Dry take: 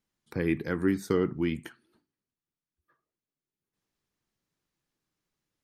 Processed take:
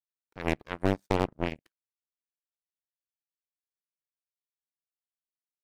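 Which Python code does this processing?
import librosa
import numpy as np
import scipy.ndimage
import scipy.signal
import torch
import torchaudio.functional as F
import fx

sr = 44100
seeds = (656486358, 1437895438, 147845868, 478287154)

y = fx.clip_asym(x, sr, top_db=-34.0, bottom_db=-18.0)
y = fx.power_curve(y, sr, exponent=3.0)
y = F.gain(torch.from_numpy(y), 8.5).numpy()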